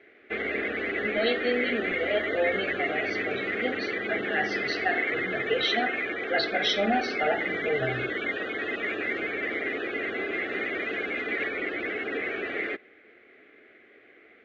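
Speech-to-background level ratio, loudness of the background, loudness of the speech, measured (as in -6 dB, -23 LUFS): -0.5 dB, -29.5 LUFS, -30.0 LUFS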